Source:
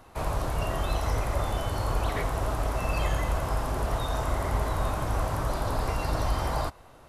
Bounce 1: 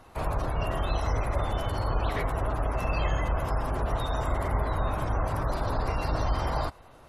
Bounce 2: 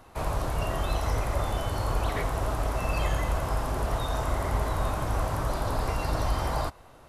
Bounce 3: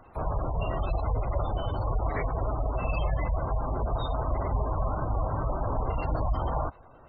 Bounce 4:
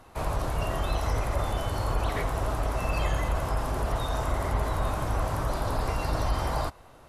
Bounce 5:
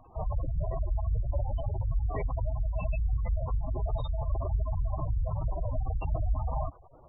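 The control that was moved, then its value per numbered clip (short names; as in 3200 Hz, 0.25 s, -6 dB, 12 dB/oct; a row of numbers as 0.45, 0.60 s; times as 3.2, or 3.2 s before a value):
spectral gate, under each frame's peak: -35, -60, -20, -45, -10 dB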